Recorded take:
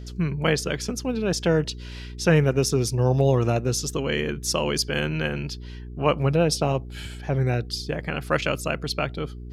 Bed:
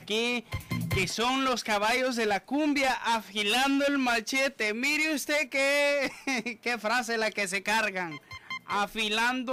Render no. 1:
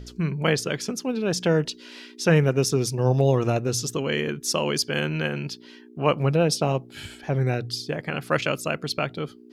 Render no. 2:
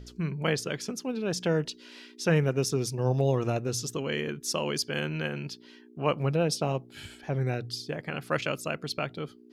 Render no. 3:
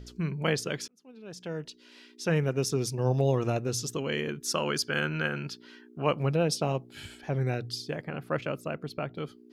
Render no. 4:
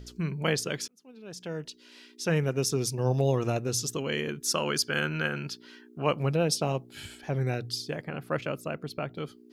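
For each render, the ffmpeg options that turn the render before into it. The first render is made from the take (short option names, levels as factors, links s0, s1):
-af "bandreject=f=60:t=h:w=4,bandreject=f=120:t=h:w=4,bandreject=f=180:t=h:w=4"
-af "volume=0.531"
-filter_complex "[0:a]asettb=1/sr,asplit=3[s0][s1][s2];[s0]atrim=end=4.454[s3];[s1]atrim=start=4.45:end=6.02,asetpts=PTS-STARTPTS,afade=t=in:d=0.004:c=qsin,afade=t=out:st=1.566:d=0.004:c=qsin,equalizer=f=1400:w=3:g=10[s4];[s2]atrim=start=6.016[s5];[s3][s4]acrossfade=d=0.004:c1=hsin:c2=qsin[s6];[s6][s5]acrossfade=d=0.004:c1=qsin:c2=hsin,asplit=3[s7][s8][s9];[s7]afade=t=out:st=8.03:d=0.02[s10];[s8]equalizer=f=6400:w=0.37:g=-14,afade=t=in:st=8.03:d=0.02,afade=t=out:st=9.16:d=0.02[s11];[s9]afade=t=in:st=9.16:d=0.02[s12];[s10][s11][s12]amix=inputs=3:normalize=0,asplit=2[s13][s14];[s13]atrim=end=0.88,asetpts=PTS-STARTPTS,afade=t=out:st=0.876:d=0.004:c=hsin[s15];[s14]atrim=start=0.88,asetpts=PTS-STARTPTS,afade=t=in:d=1.97[s16];[s15][s16]concat=n=2:v=0:a=1"
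-af "highshelf=f=5100:g=5.5"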